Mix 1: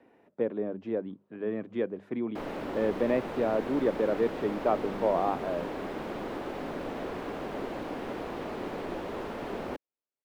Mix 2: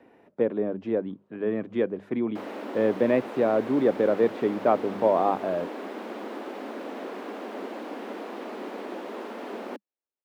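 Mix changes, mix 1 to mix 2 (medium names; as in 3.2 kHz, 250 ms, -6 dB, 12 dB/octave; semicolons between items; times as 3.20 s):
speech +5.0 dB; background: add steep high-pass 200 Hz 96 dB/octave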